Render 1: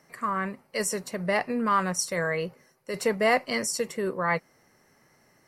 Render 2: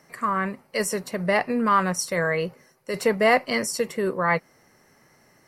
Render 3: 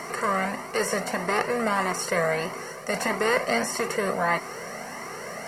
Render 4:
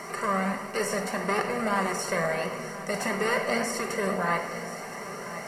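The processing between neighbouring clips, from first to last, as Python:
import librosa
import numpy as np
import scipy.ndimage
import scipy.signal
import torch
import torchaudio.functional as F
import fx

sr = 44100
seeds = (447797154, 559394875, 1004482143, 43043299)

y1 = fx.dynamic_eq(x, sr, hz=7100.0, q=1.2, threshold_db=-45.0, ratio=4.0, max_db=-5)
y1 = F.gain(torch.from_numpy(y1), 4.0).numpy()
y2 = fx.bin_compress(y1, sr, power=0.4)
y2 = fx.comb_cascade(y2, sr, direction='rising', hz=1.6)
y2 = F.gain(torch.from_numpy(y2), -2.5).numpy()
y3 = y2 + 10.0 ** (-14.5 / 20.0) * np.pad(y2, (int(1026 * sr / 1000.0), 0))[:len(y2)]
y3 = fx.room_shoebox(y3, sr, seeds[0], volume_m3=2400.0, walls='mixed', distance_m=1.2)
y3 = F.gain(torch.from_numpy(y3), -4.0).numpy()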